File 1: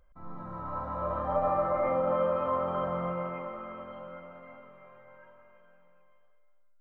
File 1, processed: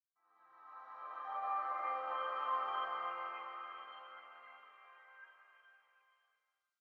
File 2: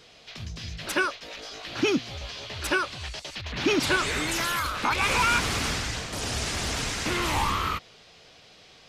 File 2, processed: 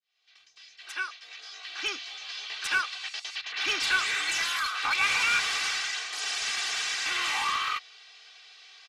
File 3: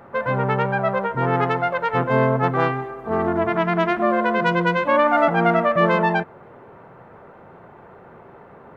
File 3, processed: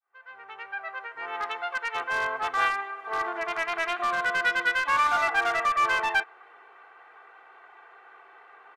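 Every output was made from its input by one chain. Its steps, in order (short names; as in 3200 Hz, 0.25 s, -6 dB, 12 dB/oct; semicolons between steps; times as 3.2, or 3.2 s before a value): opening faded in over 2.62 s; HPF 1500 Hz 12 dB/oct; comb 2.6 ms, depth 76%; in parallel at -10.5 dB: wrapped overs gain 22 dB; on the sum: air absorption 64 m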